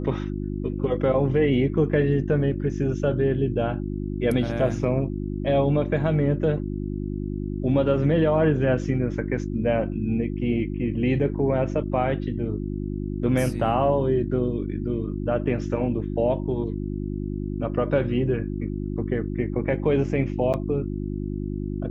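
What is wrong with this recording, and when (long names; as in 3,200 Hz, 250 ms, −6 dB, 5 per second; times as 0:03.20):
mains hum 50 Hz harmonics 7 −29 dBFS
0:20.53–0:20.54: drop-out 8.4 ms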